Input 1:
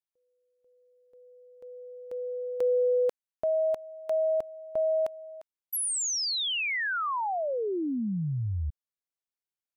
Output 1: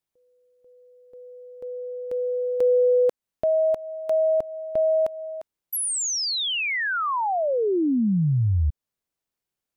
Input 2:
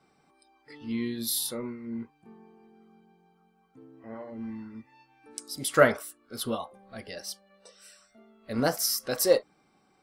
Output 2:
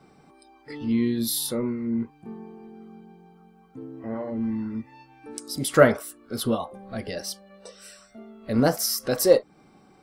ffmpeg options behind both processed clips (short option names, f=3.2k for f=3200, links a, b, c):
-filter_complex "[0:a]tiltshelf=f=650:g=4,asplit=2[a][b];[b]acompressor=threshold=-37dB:ratio=6:attack=0.64:release=166:detection=rms,volume=2dB[c];[a][c]amix=inputs=2:normalize=0,volume=3dB"